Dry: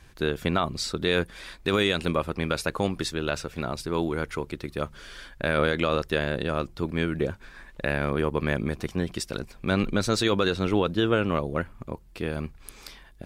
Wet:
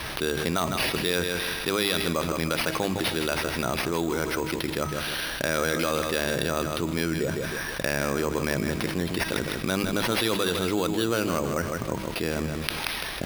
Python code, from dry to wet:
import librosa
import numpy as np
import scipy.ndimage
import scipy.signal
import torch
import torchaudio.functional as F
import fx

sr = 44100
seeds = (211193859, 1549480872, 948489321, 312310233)

p1 = fx.highpass(x, sr, hz=100.0, slope=6)
p2 = fx.high_shelf(p1, sr, hz=5300.0, db=11.5)
p3 = fx.hum_notches(p2, sr, base_hz=50, count=4)
p4 = fx.quant_dither(p3, sr, seeds[0], bits=8, dither='triangular')
p5 = p3 + F.gain(torch.from_numpy(p4), -6.0).numpy()
p6 = fx.comb_fb(p5, sr, f0_hz=320.0, decay_s=0.93, harmonics='all', damping=0.0, mix_pct=60)
p7 = p6 + fx.echo_feedback(p6, sr, ms=157, feedback_pct=30, wet_db=-11.0, dry=0)
p8 = np.repeat(p7[::6], 6)[:len(p7)]
y = fx.env_flatten(p8, sr, amount_pct=70)